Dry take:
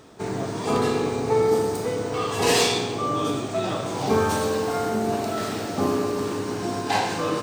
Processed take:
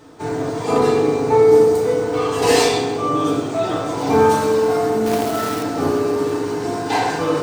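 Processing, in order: FDN reverb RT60 0.61 s, low-frequency decay 0.75×, high-frequency decay 0.35×, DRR -3.5 dB; 5.06–5.63 companded quantiser 4-bit; gain -1 dB

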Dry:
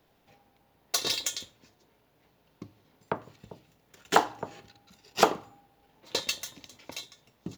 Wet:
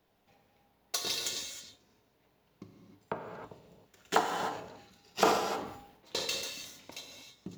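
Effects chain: non-linear reverb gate 0.34 s flat, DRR 2 dB; 4.48–6.81 sustainer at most 67 dB/s; gain -6 dB

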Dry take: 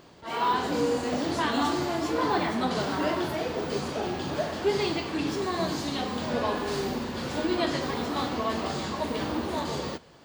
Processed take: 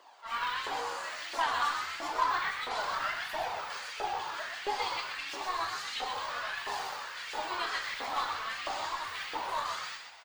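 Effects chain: steep high-pass 190 Hz 96 dB/oct; in parallel at -3 dB: vocal rider within 4 dB 2 s; on the sum: flange 1.5 Hz, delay 0.6 ms, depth 1.9 ms, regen -53%; LFO high-pass saw up 1.5 Hz 680–2400 Hz; added harmonics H 3 -22 dB, 8 -32 dB, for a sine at -10.5 dBFS; flange 0.3 Hz, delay 1 ms, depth 3.2 ms, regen +53%; on a send: frequency-shifting echo 0.125 s, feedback 42%, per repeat +75 Hz, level -6 dB

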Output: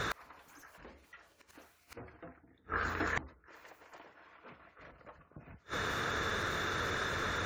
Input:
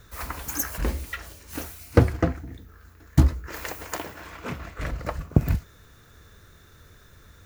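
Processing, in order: overdrive pedal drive 32 dB, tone 1700 Hz, clips at -1 dBFS; spectral gate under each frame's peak -30 dB strong; flipped gate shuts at -21 dBFS, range -38 dB

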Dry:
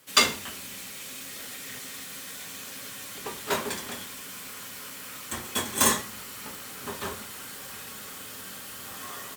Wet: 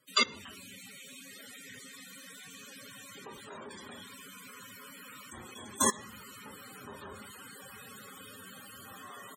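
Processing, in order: level quantiser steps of 22 dB; loudest bins only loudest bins 64

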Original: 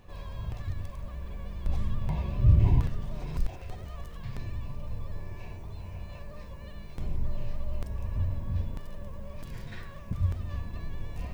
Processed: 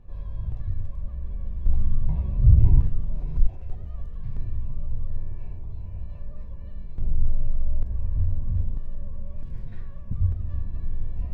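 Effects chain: tilt -3.5 dB/oct; gain -8.5 dB

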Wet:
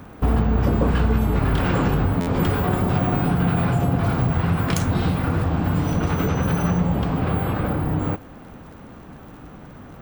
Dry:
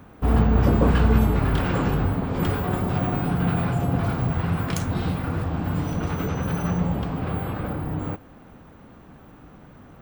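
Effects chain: compressor 4:1, threshold -22 dBFS, peak gain reduction 9 dB; crackle 59/s -48 dBFS; stuck buffer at 2.2, samples 512, times 5; gain +6 dB

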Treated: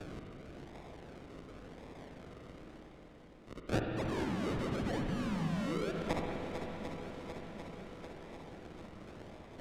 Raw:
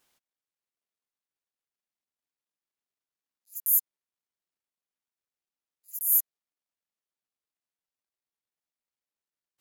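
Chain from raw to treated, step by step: reverse; upward compressor, threshold -35 dBFS; reverse; auto swell 0.331 s; painted sound fall, 3.96–5.92, 360–8800 Hz -40 dBFS; decimation with a swept rate 42×, swing 60% 0.93 Hz; air absorption 57 m; swung echo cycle 0.745 s, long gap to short 1.5:1, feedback 51%, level -11 dB; on a send at -2 dB: reverb RT60 2.2 s, pre-delay 42 ms; on the sum: three-band squash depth 40%; gain +2.5 dB

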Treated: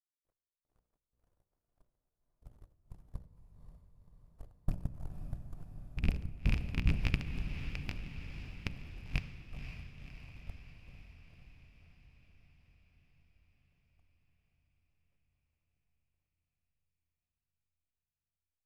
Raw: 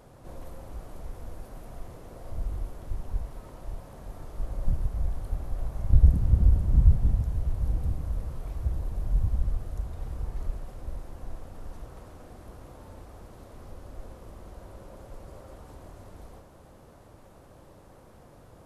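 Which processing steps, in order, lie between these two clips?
rattling part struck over -21 dBFS, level -23 dBFS; power-law curve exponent 3; limiter -15 dBFS, peak gain reduction 8.5 dB; reverse; compressor 5:1, threshold -40 dBFS, peak gain reduction 17.5 dB; reverse; de-hum 60.24 Hz, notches 10; step gate "xx..xx.xxxx" 93 bpm -60 dB; diffused feedback echo 0.531 s, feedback 65%, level -9 dB; shoebox room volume 3100 m³, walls mixed, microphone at 0.37 m; gain +14.5 dB

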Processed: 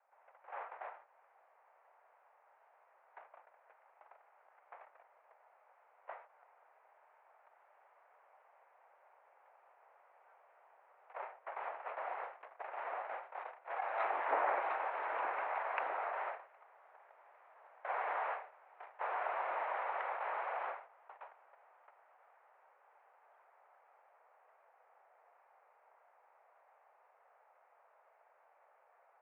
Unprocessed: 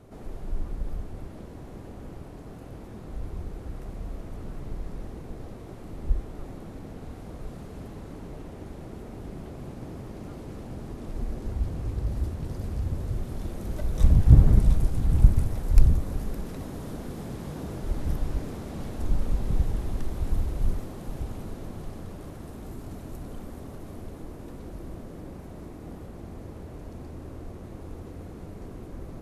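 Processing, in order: gate -30 dBFS, range -25 dB; mistuned SSB +160 Hz 570–2200 Hz; ending taper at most 120 dB/s; gain +10 dB

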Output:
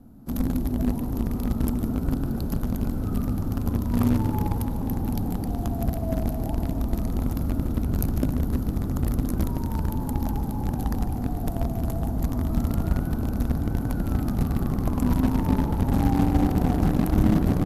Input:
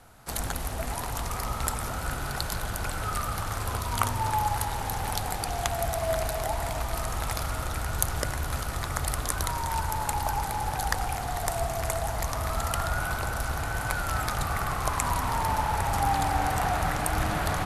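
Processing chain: EQ curve 130 Hz 0 dB, 250 Hz +14 dB, 400 Hz -5 dB, 2100 Hz -26 dB, 5200 Hz -19 dB, 9100 Hz -17 dB, 13000 Hz +7 dB; in parallel at -11 dB: bit-crush 4-bit; on the sum: air absorption 61 m; on a send: frequency-shifting echo 0.149 s, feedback 57%, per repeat +73 Hz, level -15 dB; on the sum: gain +5.5 dB

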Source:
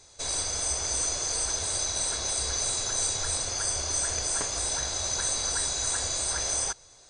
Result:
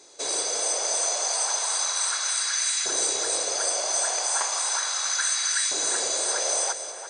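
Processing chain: LFO high-pass saw up 0.35 Hz 320–2000 Hz; split-band echo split 2700 Hz, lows 0.343 s, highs 0.191 s, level -10 dB; gain +2.5 dB

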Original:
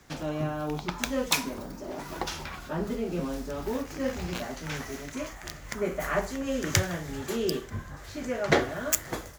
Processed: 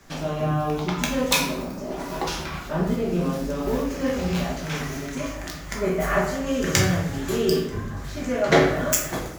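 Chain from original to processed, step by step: shoebox room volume 200 m³, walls mixed, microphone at 1.2 m; gain +2 dB

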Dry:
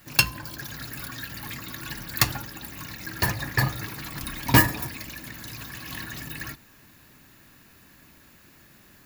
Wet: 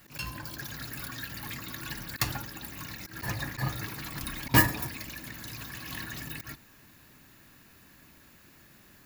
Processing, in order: auto swell 0.106 s; gain -2.5 dB

